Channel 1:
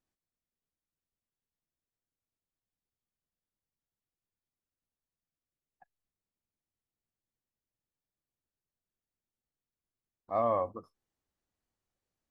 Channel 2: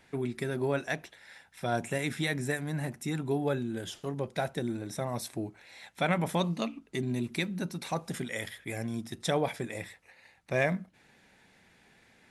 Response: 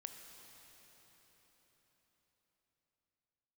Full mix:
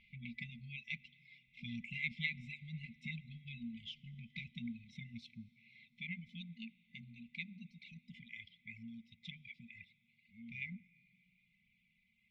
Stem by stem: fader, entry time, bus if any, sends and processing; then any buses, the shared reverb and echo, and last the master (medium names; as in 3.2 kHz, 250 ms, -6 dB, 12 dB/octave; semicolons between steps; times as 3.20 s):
-11.5 dB, 0.00 s, no send, peaking EQ 260 Hz +7.5 dB 0.77 oct
5.10 s -0.5 dB -> 5.72 s -8.5 dB, 0.00 s, send -9.5 dB, reverb removal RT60 1.2 s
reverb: on, RT60 4.9 s, pre-delay 19 ms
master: FFT band-reject 240–2000 Hz; low-pass 3 kHz 24 dB/octave; peaking EQ 130 Hz -12.5 dB 1.3 oct